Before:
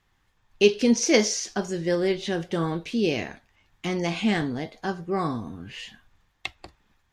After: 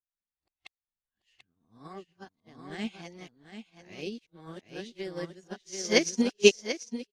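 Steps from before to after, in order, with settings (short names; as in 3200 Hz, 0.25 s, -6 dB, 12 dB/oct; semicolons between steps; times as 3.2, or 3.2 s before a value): whole clip reversed; high shelf 2500 Hz +5.5 dB; echo 0.739 s -4 dB; upward expander 2.5:1, over -39 dBFS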